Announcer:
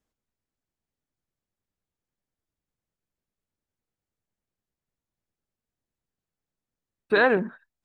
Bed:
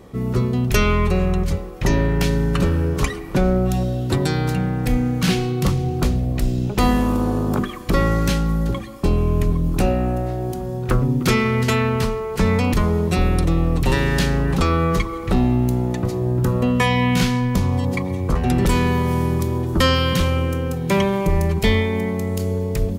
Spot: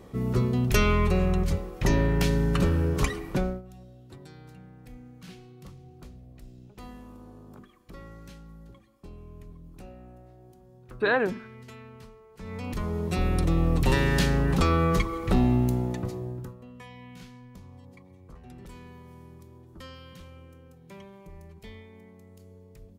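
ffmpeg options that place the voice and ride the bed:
ffmpeg -i stem1.wav -i stem2.wav -filter_complex "[0:a]adelay=3900,volume=-4dB[link_01];[1:a]volume=18dB,afade=type=out:start_time=3.25:duration=0.37:silence=0.0749894,afade=type=in:start_time=12.38:duration=1.32:silence=0.0707946,afade=type=out:start_time=15.56:duration=1:silence=0.0630957[link_02];[link_01][link_02]amix=inputs=2:normalize=0" out.wav

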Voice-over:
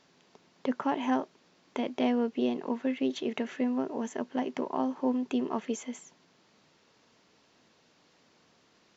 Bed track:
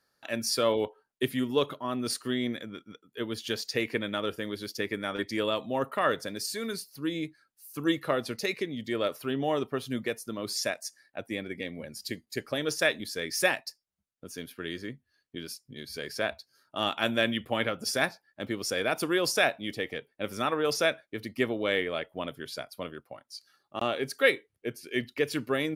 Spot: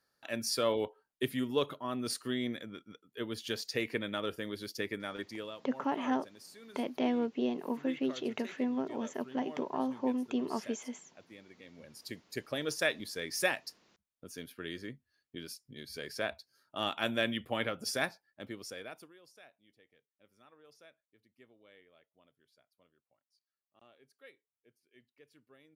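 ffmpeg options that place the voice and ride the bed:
ffmpeg -i stem1.wav -i stem2.wav -filter_complex "[0:a]adelay=5000,volume=-3.5dB[link_01];[1:a]volume=9.5dB,afade=type=out:start_time=4.84:duration=0.76:silence=0.188365,afade=type=in:start_time=11.61:duration=0.76:silence=0.199526,afade=type=out:start_time=17.93:duration=1.2:silence=0.0398107[link_02];[link_01][link_02]amix=inputs=2:normalize=0" out.wav

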